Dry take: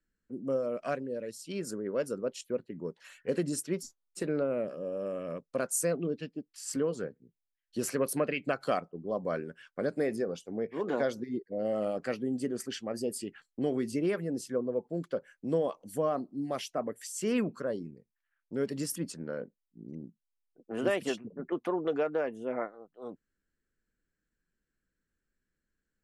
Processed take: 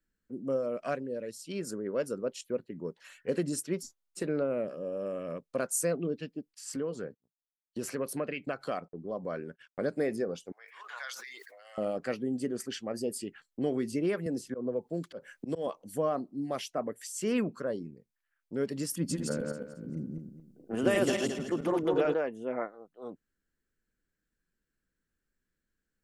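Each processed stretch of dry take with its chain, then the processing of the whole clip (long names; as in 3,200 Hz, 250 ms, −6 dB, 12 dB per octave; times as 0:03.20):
0:06.54–0:09.79: noise gate −54 dBFS, range −30 dB + high-shelf EQ 5,900 Hz −4.5 dB + downward compressor 1.5 to 1, threshold −36 dBFS
0:10.52–0:11.78: high-pass filter 1,200 Hz 24 dB per octave + level that may fall only so fast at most 27 dB per second
0:14.26–0:15.67: volume swells 138 ms + multiband upward and downward compressor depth 70%
0:18.97–0:22.14: feedback delay that plays each chunk backwards 110 ms, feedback 51%, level −1.5 dB + bass and treble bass +6 dB, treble +6 dB + notch filter 4,100 Hz, Q 27
whole clip: no processing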